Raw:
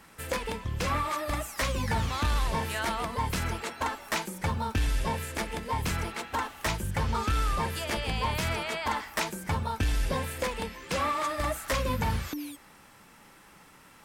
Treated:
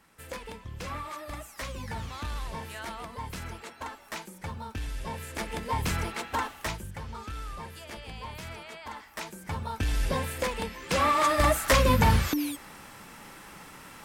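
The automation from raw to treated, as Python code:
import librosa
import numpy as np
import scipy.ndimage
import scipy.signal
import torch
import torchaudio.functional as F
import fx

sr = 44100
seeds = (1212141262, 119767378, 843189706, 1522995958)

y = fx.gain(x, sr, db=fx.line((4.96, -8.0), (5.62, 1.0), (6.48, 1.0), (7.01, -11.0), (8.93, -11.0), (10.06, 1.0), (10.71, 1.0), (11.33, 7.5)))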